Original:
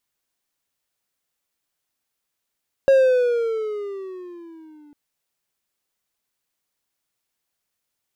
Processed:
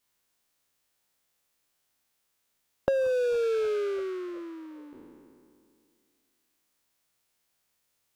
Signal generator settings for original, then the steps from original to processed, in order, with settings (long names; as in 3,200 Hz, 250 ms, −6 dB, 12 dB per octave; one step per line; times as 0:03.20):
pitch glide with a swell triangle, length 2.05 s, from 547 Hz, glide −11 semitones, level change −35.5 dB, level −8 dB
peak hold with a decay on every bin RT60 2.37 s
downward compressor 12 to 1, threshold −23 dBFS